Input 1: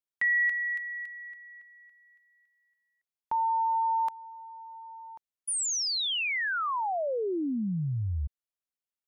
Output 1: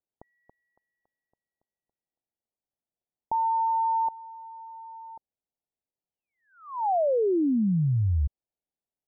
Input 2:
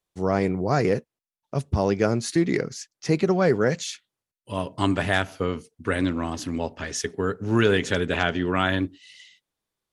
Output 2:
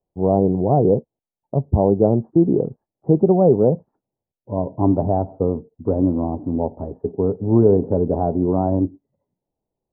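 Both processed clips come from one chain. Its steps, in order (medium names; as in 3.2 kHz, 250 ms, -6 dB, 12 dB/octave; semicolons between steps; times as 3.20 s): steep low-pass 870 Hz 48 dB/octave; trim +6.5 dB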